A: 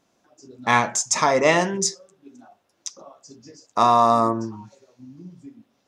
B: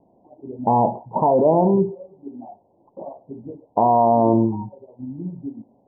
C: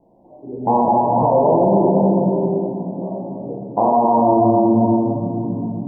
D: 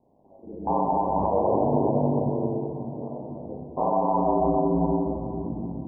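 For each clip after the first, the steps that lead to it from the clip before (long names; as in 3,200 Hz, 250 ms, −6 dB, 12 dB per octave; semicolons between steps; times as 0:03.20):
Butterworth low-pass 950 Hz 96 dB per octave; in parallel at +3 dB: compressor whose output falls as the input rises −26 dBFS, ratio −1
rectangular room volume 140 cubic metres, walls hard, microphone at 0.75 metres; brickwall limiter −6.5 dBFS, peak gain reduction 8.5 dB
ring modulation 50 Hz; echo machine with several playback heads 292 ms, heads first and second, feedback 46%, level −23 dB; level −5.5 dB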